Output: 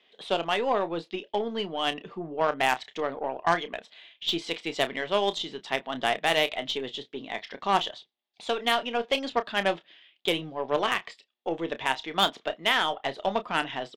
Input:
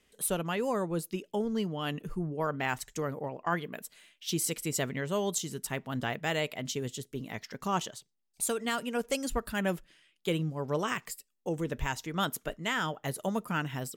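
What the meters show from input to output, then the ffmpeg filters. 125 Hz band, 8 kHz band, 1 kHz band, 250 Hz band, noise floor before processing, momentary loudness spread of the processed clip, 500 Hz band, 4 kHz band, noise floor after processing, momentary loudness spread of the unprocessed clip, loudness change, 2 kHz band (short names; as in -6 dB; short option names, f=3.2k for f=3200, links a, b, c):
-8.5 dB, -9.0 dB, +8.0 dB, -1.5 dB, -74 dBFS, 11 LU, +5.0 dB, +10.5 dB, -69 dBFS, 7 LU, +5.0 dB, +6.5 dB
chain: -filter_complex "[0:a]highpass=390,equalizer=f=500:t=q:w=4:g=-3,equalizer=f=720:t=q:w=4:g=5,equalizer=f=1.4k:t=q:w=4:g=-5,equalizer=f=3.5k:t=q:w=4:g=8,lowpass=f=3.9k:w=0.5412,lowpass=f=3.9k:w=1.3066,aeval=exprs='0.168*(cos(1*acos(clip(val(0)/0.168,-1,1)))-cos(1*PI/2))+0.0266*(cos(6*acos(clip(val(0)/0.168,-1,1)))-cos(6*PI/2))+0.0211*(cos(8*acos(clip(val(0)/0.168,-1,1)))-cos(8*PI/2))':c=same,asplit=2[a][b];[b]adelay=30,volume=-12dB[c];[a][c]amix=inputs=2:normalize=0,volume=6.5dB"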